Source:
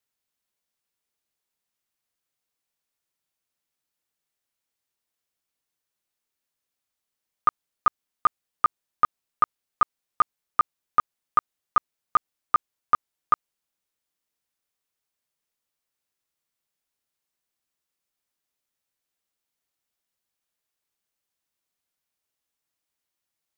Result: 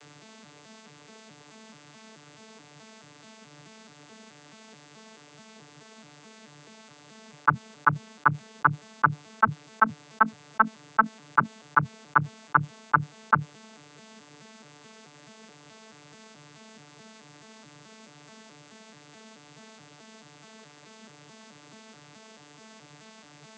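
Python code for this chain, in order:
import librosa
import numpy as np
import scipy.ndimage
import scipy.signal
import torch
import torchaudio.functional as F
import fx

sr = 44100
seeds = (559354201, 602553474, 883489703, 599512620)

y = fx.vocoder_arp(x, sr, chord='bare fifth', root=50, every_ms=215)
y = fx.env_flatten(y, sr, amount_pct=70)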